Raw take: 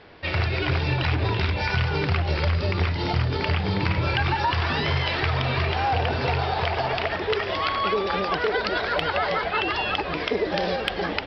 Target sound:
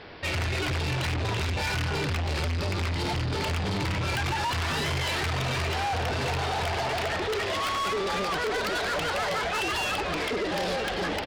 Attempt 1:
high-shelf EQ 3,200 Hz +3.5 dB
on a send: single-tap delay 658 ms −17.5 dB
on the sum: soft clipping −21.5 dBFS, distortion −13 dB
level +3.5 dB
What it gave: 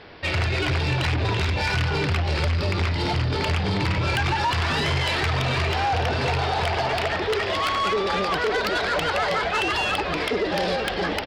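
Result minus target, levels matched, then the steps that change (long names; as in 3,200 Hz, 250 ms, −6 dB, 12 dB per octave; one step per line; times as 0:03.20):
soft clipping: distortion −6 dB
change: soft clipping −29.5 dBFS, distortion −7 dB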